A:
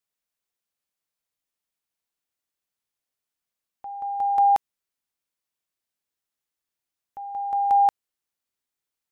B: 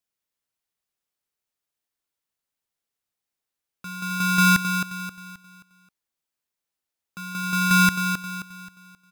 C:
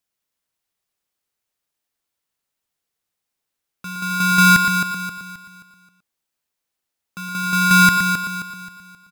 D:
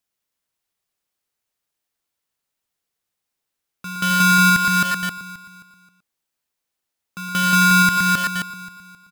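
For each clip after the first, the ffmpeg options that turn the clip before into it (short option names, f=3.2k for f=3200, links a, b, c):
-filter_complex "[0:a]asplit=2[a][b];[b]adelay=265,lowpass=f=1.3k:p=1,volume=-6.5dB,asplit=2[c][d];[d]adelay=265,lowpass=f=1.3k:p=1,volume=0.45,asplit=2[e][f];[f]adelay=265,lowpass=f=1.3k:p=1,volume=0.45,asplit=2[g][h];[h]adelay=265,lowpass=f=1.3k:p=1,volume=0.45,asplit=2[i][j];[j]adelay=265,lowpass=f=1.3k:p=1,volume=0.45[k];[c][e][g][i][k]amix=inputs=5:normalize=0[l];[a][l]amix=inputs=2:normalize=0,aeval=exprs='val(0)*sgn(sin(2*PI*620*n/s))':c=same"
-filter_complex "[0:a]asplit=2[a][b];[b]adelay=116.6,volume=-7dB,highshelf=f=4k:g=-2.62[c];[a][c]amix=inputs=2:normalize=0,volume=4.5dB"
-filter_complex "[0:a]asplit=2[a][b];[b]acrusher=bits=3:mix=0:aa=0.000001,volume=-4dB[c];[a][c]amix=inputs=2:normalize=0,alimiter=limit=-9dB:level=0:latency=1:release=342"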